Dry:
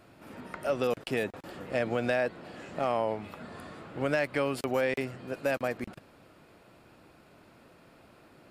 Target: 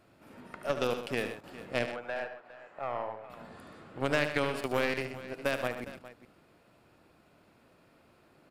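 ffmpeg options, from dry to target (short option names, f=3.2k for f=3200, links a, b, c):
-filter_complex "[0:a]asettb=1/sr,asplit=3[a][b][c];[a]atrim=end=1.854[d];[b]atrim=start=1.85:end=3.3,asetpts=PTS-STARTPTS,afade=t=in:d=0.004:c=qsin,afade=t=out:st=1.446:d=0.004:c=qsin,acrossover=split=530 2100:gain=0.1 1 0.178[e][f][g];[e][f][g]amix=inputs=3:normalize=0[h];[c]atrim=start=3.296[i];[d][h]acrossfade=d=0.004:c1=hsin:c2=qsin[j];[j][i]acrossfade=d=0.004:c1=qsin:c2=hsin,aeval=exprs='0.15*(cos(1*acos(clip(val(0)/0.15,-1,1)))-cos(1*PI/2))+0.0168*(cos(2*acos(clip(val(0)/0.15,-1,1)))-cos(2*PI/2))+0.0299*(cos(3*acos(clip(val(0)/0.15,-1,1)))-cos(3*PI/2))':c=same,aecho=1:1:74|127|408:0.316|0.266|0.158,volume=1.5dB"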